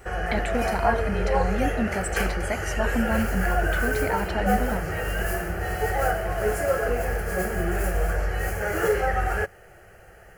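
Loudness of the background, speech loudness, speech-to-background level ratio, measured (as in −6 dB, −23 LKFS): −26.0 LKFS, −30.0 LKFS, −4.0 dB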